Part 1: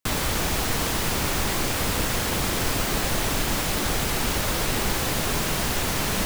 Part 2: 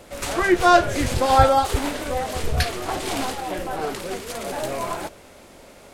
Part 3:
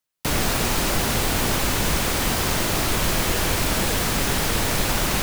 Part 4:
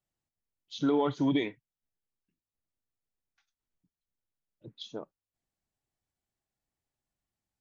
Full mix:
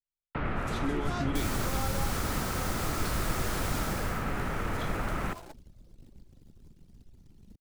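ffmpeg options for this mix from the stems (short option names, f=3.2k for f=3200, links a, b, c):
-filter_complex "[0:a]acrossover=split=370|3000[a][b][c];[b]acompressor=threshold=-37dB:ratio=4[d];[a][d][c]amix=inputs=3:normalize=0,adelay=1300,volume=-10dB,afade=t=out:st=3.79:d=0.46:silence=0.237137[e];[1:a]adelay=450,volume=-17.5dB[f];[2:a]lowpass=f=2.2k:w=0.5412,lowpass=f=2.2k:w=1.3066,equalizer=f=1.3k:t=o:w=0.21:g=8,adelay=100,volume=-7.5dB[g];[3:a]volume=-3.5dB[h];[e][f][g][h]amix=inputs=4:normalize=0,anlmdn=0.0398,acrossover=split=250|3000[i][j][k];[j]acompressor=threshold=-33dB:ratio=6[l];[i][l][k]amix=inputs=3:normalize=0"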